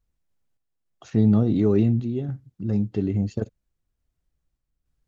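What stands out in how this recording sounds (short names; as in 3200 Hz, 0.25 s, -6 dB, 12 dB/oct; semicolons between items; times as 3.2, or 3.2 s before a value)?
random-step tremolo 3.5 Hz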